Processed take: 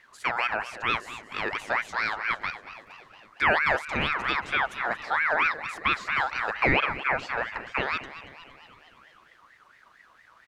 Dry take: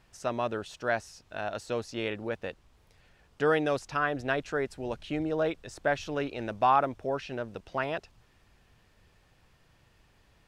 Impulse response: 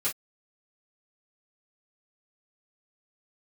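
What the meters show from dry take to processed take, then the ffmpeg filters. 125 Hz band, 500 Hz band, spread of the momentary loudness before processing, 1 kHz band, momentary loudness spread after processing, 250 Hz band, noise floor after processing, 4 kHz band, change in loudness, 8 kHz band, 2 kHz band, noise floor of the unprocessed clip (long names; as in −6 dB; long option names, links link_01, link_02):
−0.5 dB, −4.0 dB, 11 LU, +3.0 dB, 10 LU, −3.5 dB, −58 dBFS, +8.5 dB, +4.5 dB, can't be measured, +10.5 dB, −65 dBFS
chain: -filter_complex "[0:a]asplit=2[link_01][link_02];[link_02]alimiter=limit=-22dB:level=0:latency=1:release=177,volume=-0.5dB[link_03];[link_01][link_03]amix=inputs=2:normalize=0,tiltshelf=frequency=970:gain=4,asplit=7[link_04][link_05][link_06][link_07][link_08][link_09][link_10];[link_05]adelay=231,afreqshift=130,volume=-14dB[link_11];[link_06]adelay=462,afreqshift=260,volume=-18.9dB[link_12];[link_07]adelay=693,afreqshift=390,volume=-23.8dB[link_13];[link_08]adelay=924,afreqshift=520,volume=-28.6dB[link_14];[link_09]adelay=1155,afreqshift=650,volume=-33.5dB[link_15];[link_10]adelay=1386,afreqshift=780,volume=-38.4dB[link_16];[link_04][link_11][link_12][link_13][link_14][link_15][link_16]amix=inputs=7:normalize=0,aeval=exprs='val(0)*sin(2*PI*1500*n/s+1500*0.3/4.4*sin(2*PI*4.4*n/s))':channel_layout=same"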